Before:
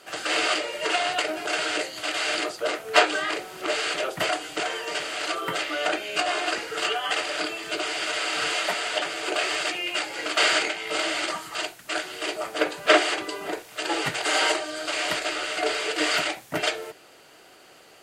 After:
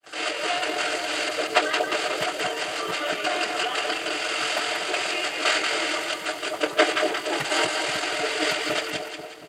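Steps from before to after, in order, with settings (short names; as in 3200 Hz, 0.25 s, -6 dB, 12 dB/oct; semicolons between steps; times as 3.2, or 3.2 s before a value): opening faded in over 0.63 s; split-band echo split 800 Hz, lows 0.457 s, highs 0.343 s, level -4 dB; tempo 1.9×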